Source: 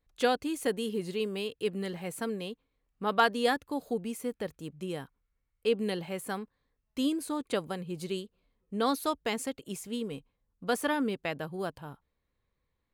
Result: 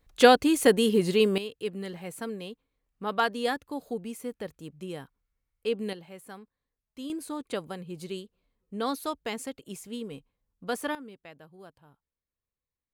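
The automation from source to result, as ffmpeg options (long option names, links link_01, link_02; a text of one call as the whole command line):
ffmpeg -i in.wav -af "asetnsamples=nb_out_samples=441:pad=0,asendcmd='1.38 volume volume -1.5dB;5.93 volume volume -9.5dB;7.1 volume volume -2dB;10.95 volume volume -14.5dB',volume=10dB" out.wav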